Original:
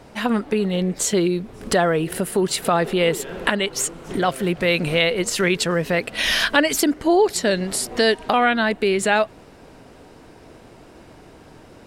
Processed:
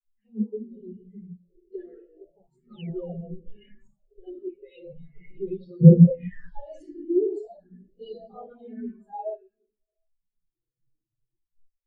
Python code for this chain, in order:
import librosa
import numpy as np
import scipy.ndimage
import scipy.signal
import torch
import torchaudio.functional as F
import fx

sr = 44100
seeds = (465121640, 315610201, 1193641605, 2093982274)

y = fx.env_lowpass(x, sr, base_hz=1100.0, full_db=-15.5)
y = fx.room_shoebox(y, sr, seeds[0], volume_m3=1900.0, walls='mixed', distance_m=4.0)
y = fx.spec_paint(y, sr, seeds[1], shape='fall', start_s=2.69, length_s=0.49, low_hz=480.0, high_hz=4700.0, level_db=-16.0)
y = fx.phaser_stages(y, sr, stages=4, low_hz=140.0, high_hz=2100.0, hz=0.39, feedback_pct=30)
y = fx.low_shelf(y, sr, hz=500.0, db=10.5, at=(5.81, 6.28))
y = fx.chorus_voices(y, sr, voices=6, hz=0.19, base_ms=12, depth_ms=4.7, mix_pct=60)
y = fx.spectral_expand(y, sr, expansion=2.5)
y = F.gain(torch.from_numpy(y), -3.0).numpy()